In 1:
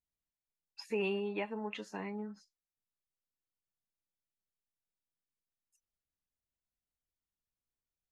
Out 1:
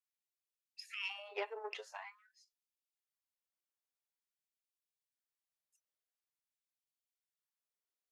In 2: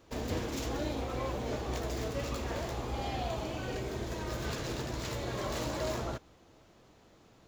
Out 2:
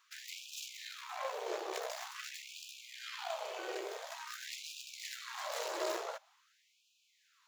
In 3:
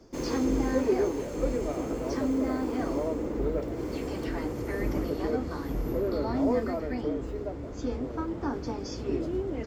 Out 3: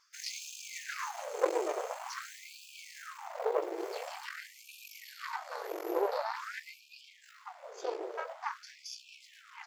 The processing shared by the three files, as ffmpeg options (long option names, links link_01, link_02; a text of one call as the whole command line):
ffmpeg -i in.wav -af "aeval=exprs='0.211*(cos(1*acos(clip(val(0)/0.211,-1,1)))-cos(1*PI/2))+0.0668*(cos(4*acos(clip(val(0)/0.211,-1,1)))-cos(4*PI/2))+0.0075*(cos(7*acos(clip(val(0)/0.211,-1,1)))-cos(7*PI/2))':channel_layout=same,afftfilt=real='re*gte(b*sr/1024,320*pow(2400/320,0.5+0.5*sin(2*PI*0.47*pts/sr)))':imag='im*gte(b*sr/1024,320*pow(2400/320,0.5+0.5*sin(2*PI*0.47*pts/sr)))':win_size=1024:overlap=0.75" out.wav